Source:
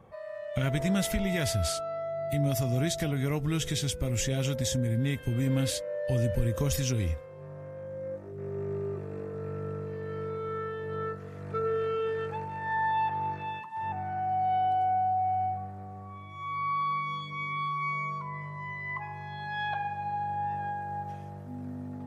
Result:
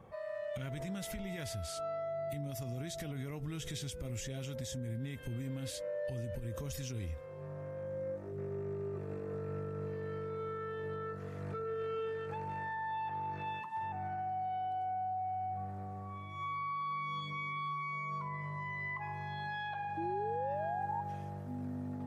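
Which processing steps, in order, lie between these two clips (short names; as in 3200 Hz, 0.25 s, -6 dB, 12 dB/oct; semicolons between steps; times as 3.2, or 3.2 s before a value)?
compressor 5:1, threshold -33 dBFS, peak gain reduction 12 dB; limiter -31.5 dBFS, peak gain reduction 8.5 dB; painted sound rise, 19.97–21.01, 320–950 Hz -39 dBFS; gain -1 dB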